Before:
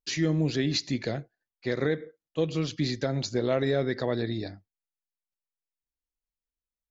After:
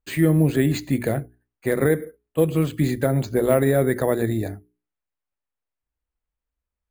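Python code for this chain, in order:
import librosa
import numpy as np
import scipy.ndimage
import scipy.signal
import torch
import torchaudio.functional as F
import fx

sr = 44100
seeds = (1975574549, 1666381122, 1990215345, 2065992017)

y = scipy.signal.sosfilt(scipy.signal.butter(2, 2100.0, 'lowpass', fs=sr, output='sos'), x)
y = fx.peak_eq(y, sr, hz=62.0, db=14.0, octaves=0.56)
y = fx.hum_notches(y, sr, base_hz=60, count=7)
y = np.repeat(scipy.signal.resample_poly(y, 1, 4), 4)[:len(y)]
y = y * librosa.db_to_amplitude(8.0)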